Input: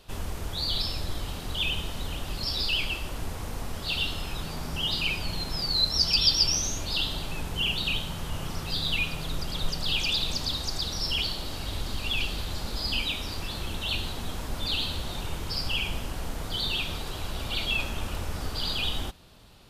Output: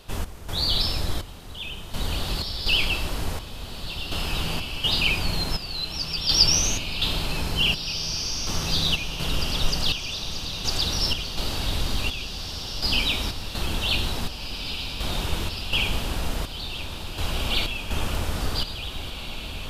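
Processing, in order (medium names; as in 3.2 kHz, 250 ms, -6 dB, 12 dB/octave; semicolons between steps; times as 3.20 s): trance gate "x.xxx...x" 62 bpm -12 dB; echo that smears into a reverb 1808 ms, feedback 46%, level -7.5 dB; trim +5.5 dB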